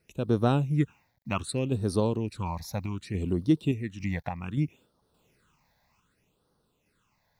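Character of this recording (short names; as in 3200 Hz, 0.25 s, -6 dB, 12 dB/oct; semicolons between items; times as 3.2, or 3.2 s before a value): a quantiser's noise floor 12-bit, dither none; random-step tremolo; phasing stages 8, 0.65 Hz, lowest notch 370–2400 Hz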